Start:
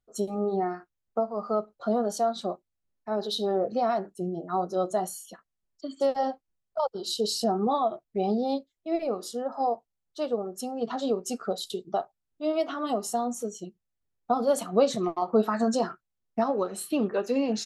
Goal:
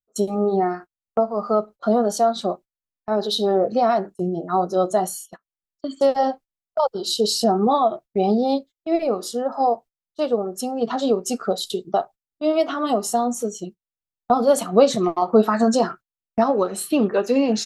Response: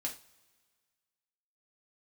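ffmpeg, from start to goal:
-af "agate=range=0.0794:threshold=0.00631:ratio=16:detection=peak,volume=2.37"

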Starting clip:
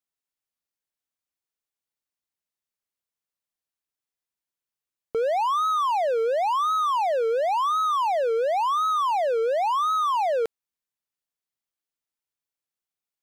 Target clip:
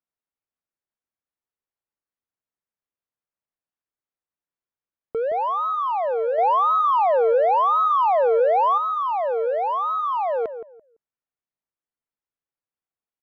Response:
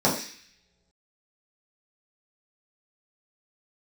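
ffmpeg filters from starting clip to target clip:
-filter_complex "[0:a]lowpass=1800,asplit=2[s0][s1];[s1]adelay=169,lowpass=f=1000:p=1,volume=0.355,asplit=2[s2][s3];[s3]adelay=169,lowpass=f=1000:p=1,volume=0.23,asplit=2[s4][s5];[s5]adelay=169,lowpass=f=1000:p=1,volume=0.23[s6];[s0][s2][s4][s6]amix=inputs=4:normalize=0,asettb=1/sr,asplit=3[s7][s8][s9];[s7]atrim=end=6.384[s10];[s8]atrim=start=6.38:end=8.78,asetpts=PTS-STARTPTS,afade=t=in:d=0.004:c=qsin,afade=t=out:st=2.396:d=0.004:c=qsin,acontrast=28[s11];[s9]atrim=start=8.776[s12];[s10][s11]acrossfade=d=0.004:c1=hsin:c2=qsin[s13];[s13][s12]acrossfade=d=0.004:c1=qsin:c2=hsin"

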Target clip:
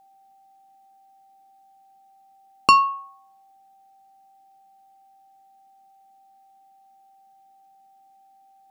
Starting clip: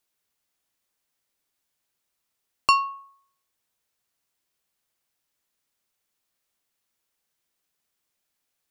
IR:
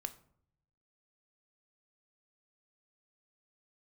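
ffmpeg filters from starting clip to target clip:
-filter_complex "[0:a]equalizer=f=230:t=o:w=1.9:g=13.5,asplit=2[s0][s1];[1:a]atrim=start_sample=2205,atrim=end_sample=3969[s2];[s1][s2]afir=irnorm=-1:irlink=0,volume=0.891[s3];[s0][s3]amix=inputs=2:normalize=0,aeval=exprs='val(0)+0.00251*sin(2*PI*780*n/s)':c=same,bandreject=f=50:t=h:w=6,bandreject=f=100:t=h:w=6,bandreject=f=150:t=h:w=6,volume=0.841"

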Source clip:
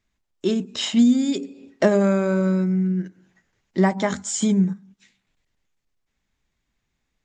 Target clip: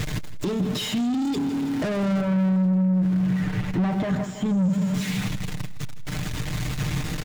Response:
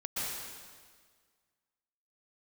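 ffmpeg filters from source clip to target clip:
-filter_complex "[0:a]aeval=exprs='val(0)+0.5*0.0376*sgn(val(0))':c=same,highshelf=f=6700:g=-5.5,aecho=1:1:6.6:0.62,aecho=1:1:162|324|486|648|810|972:0.2|0.116|0.0671|0.0389|0.0226|0.0131,asoftclip=type=tanh:threshold=0.0562,acompressor=threshold=0.0224:ratio=6,equalizer=f=120:t=o:w=1.6:g=14,asettb=1/sr,asplit=3[s0][s1][s2];[s0]atrim=end=2.214[s3];[s1]atrim=start=2.21:end=4.7,asetpts=PTS-STARTPTS,afade=t=in:d=0.004:c=qsin,afade=t=out:st=2.486:d=0.004:c=qsin,acrossover=split=3100[s4][s5];[s5]acompressor=threshold=0.00178:ratio=4:attack=1:release=60[s6];[s4][s6]amix=inputs=2:normalize=0[s7];[s2]atrim=start=4.696[s8];[s3][s7]acrossfade=d=0.004:c1=hsin:c2=qsin[s9];[s9][s8]acrossfade=d=0.004:c1=qsin:c2=hsin,volume=1.68"

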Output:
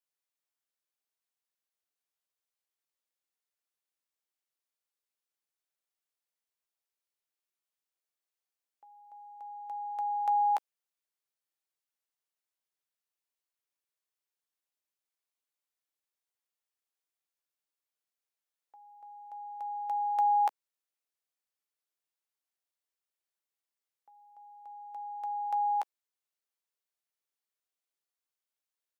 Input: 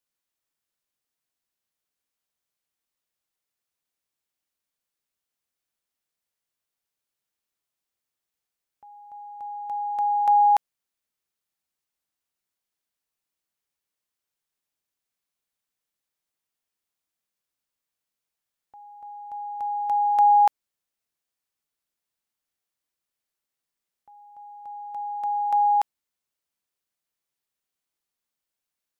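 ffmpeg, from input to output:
-filter_complex "[0:a]highpass=f=340:w=0.5412,highpass=f=340:w=1.3066,asplit=2[s0][s1];[s1]adelay=14,volume=0.237[s2];[s0][s2]amix=inputs=2:normalize=0,volume=0.447"

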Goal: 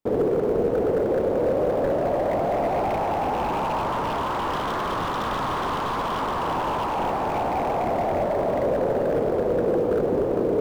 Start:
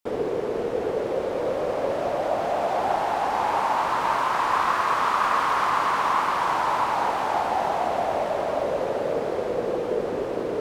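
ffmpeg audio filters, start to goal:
-af "acrusher=bits=6:mode=log:mix=0:aa=0.000001,aeval=exprs='0.0891*(abs(mod(val(0)/0.0891+3,4)-2)-1)':c=same,tiltshelf=f=970:g=9"

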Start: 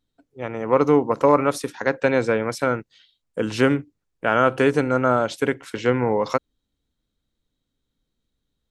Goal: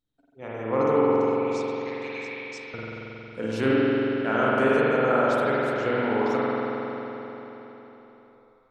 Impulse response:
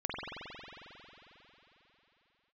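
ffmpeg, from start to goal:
-filter_complex "[0:a]asettb=1/sr,asplit=3[s0][s1][s2];[s0]atrim=end=1.114[s3];[s1]atrim=start=1.11:end=2.74,asetpts=PTS-STARTPTS,afade=t=in:d=0.004:c=qsin,afade=t=out:st=1.626:d=0.004:c=qsin,asuperpass=centerf=4100:order=12:qfactor=0.74[s4];[s2]atrim=start=2.736[s5];[s3][s4]acrossfade=d=0.004:c1=hsin:c2=qsin[s6];[s6][s5]acrossfade=d=0.004:c1=qsin:c2=hsin[s7];[1:a]atrim=start_sample=2205[s8];[s7][s8]afir=irnorm=-1:irlink=0,volume=0.398"

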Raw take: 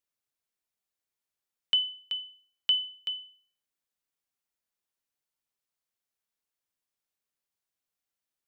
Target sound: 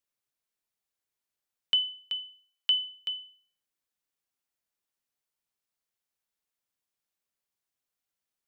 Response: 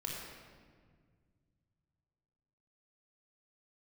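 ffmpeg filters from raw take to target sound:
-filter_complex "[0:a]asplit=3[s0][s1][s2];[s0]afade=t=out:st=2.17:d=0.02[s3];[s1]highpass=720,afade=t=in:st=2.17:d=0.02,afade=t=out:st=2.86:d=0.02[s4];[s2]afade=t=in:st=2.86:d=0.02[s5];[s3][s4][s5]amix=inputs=3:normalize=0"

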